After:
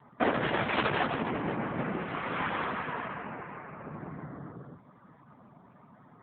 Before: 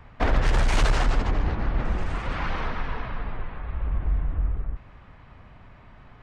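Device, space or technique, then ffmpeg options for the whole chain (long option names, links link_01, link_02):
mobile call with aggressive noise cancelling: -af "highpass=frequency=150:width=0.5412,highpass=frequency=150:width=1.3066,afftdn=noise_reduction=30:noise_floor=-51,volume=1.5dB" -ar 8000 -c:a libopencore_amrnb -b:a 7950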